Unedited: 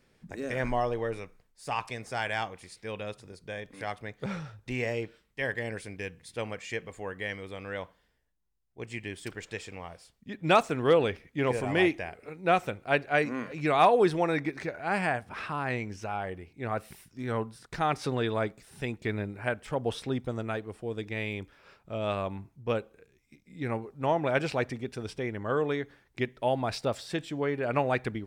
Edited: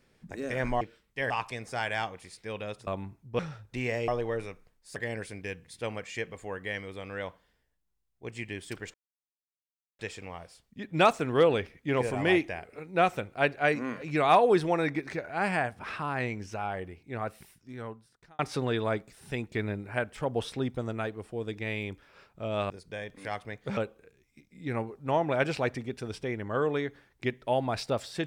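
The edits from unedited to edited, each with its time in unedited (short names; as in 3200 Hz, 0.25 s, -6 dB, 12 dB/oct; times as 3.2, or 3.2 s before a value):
0.81–1.69 swap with 5.02–5.51
3.26–4.33 swap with 22.2–22.72
9.49 insert silence 1.05 s
16.39–17.89 fade out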